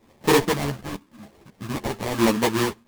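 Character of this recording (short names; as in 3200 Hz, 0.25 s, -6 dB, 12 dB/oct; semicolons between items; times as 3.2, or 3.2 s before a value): phasing stages 2, 0.94 Hz, lowest notch 380–1600 Hz; aliases and images of a low sample rate 1400 Hz, jitter 20%; a shimmering, thickened sound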